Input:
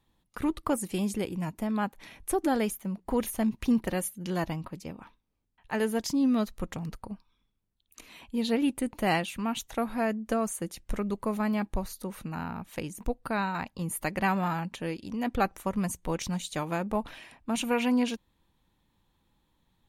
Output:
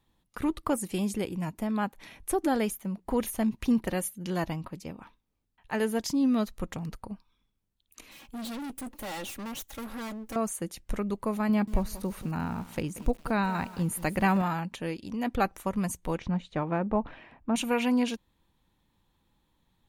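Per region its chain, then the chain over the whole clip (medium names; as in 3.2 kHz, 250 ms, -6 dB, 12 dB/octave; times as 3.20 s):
8.11–10.36 s: comb filter that takes the minimum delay 3.6 ms + treble shelf 11 kHz +11.5 dB + overload inside the chain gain 35.5 dB
11.49–14.42 s: bass shelf 390 Hz +5.5 dB + bit-crushed delay 184 ms, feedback 35%, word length 7-bit, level -14.5 dB
16.19–17.56 s: low-pass 2.3 kHz + tilt shelf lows +3 dB, about 1.4 kHz
whole clip: none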